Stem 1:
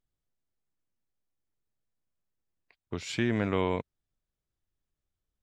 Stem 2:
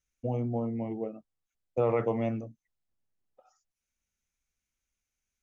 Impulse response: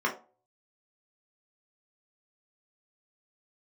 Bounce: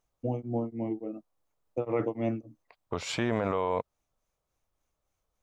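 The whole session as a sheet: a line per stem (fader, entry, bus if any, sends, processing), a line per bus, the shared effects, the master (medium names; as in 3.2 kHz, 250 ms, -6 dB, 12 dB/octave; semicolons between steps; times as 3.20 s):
+2.5 dB, 0.00 s, no send, high-order bell 770 Hz +11 dB
0.0 dB, 0.00 s, no send, peaking EQ 310 Hz +14 dB 0.28 oct; tremolo of two beating tones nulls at 3.5 Hz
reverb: none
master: peak limiter -17.5 dBFS, peak gain reduction 12 dB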